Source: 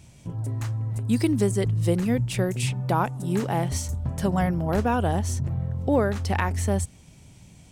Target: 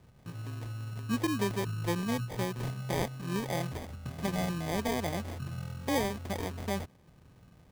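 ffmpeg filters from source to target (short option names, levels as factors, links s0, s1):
-filter_complex "[0:a]acrossover=split=100[s0][s1];[s0]acompressor=threshold=0.00501:ratio=6[s2];[s2][s1]amix=inputs=2:normalize=0,acrusher=samples=32:mix=1:aa=0.000001,volume=0.398"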